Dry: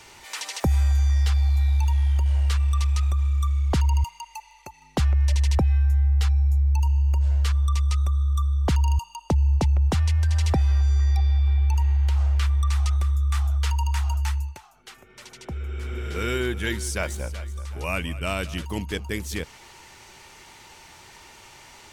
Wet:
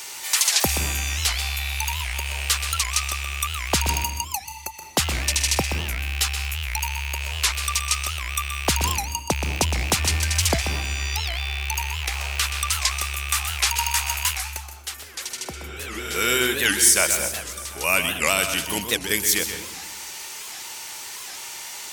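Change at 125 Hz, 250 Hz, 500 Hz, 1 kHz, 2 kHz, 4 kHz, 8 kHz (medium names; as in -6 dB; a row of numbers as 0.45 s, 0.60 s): -9.0 dB, 0.0 dB, +3.5 dB, +6.5 dB, +11.0 dB, +13.0 dB, +17.5 dB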